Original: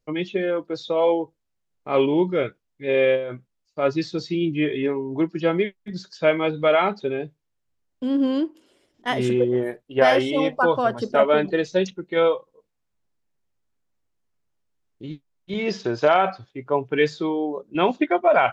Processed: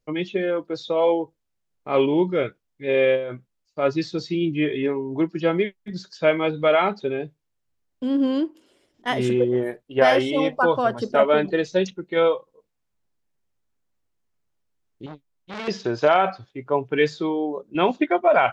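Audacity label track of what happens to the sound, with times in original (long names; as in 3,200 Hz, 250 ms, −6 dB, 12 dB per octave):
15.060000	15.680000	saturating transformer saturates under 2,300 Hz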